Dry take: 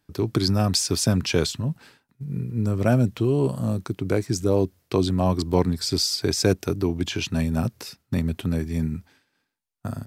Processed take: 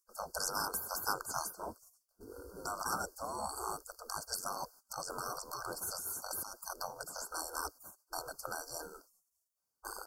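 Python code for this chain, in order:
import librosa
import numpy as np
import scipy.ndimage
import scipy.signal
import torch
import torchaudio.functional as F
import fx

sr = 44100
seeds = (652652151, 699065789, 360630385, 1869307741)

y = fx.spec_gate(x, sr, threshold_db=-25, keep='weak')
y = fx.over_compress(y, sr, threshold_db=-45.0, ratio=-1.0, at=(4.63, 6.71))
y = fx.brickwall_bandstop(y, sr, low_hz=1600.0, high_hz=4300.0)
y = F.gain(torch.from_numpy(y), 5.5).numpy()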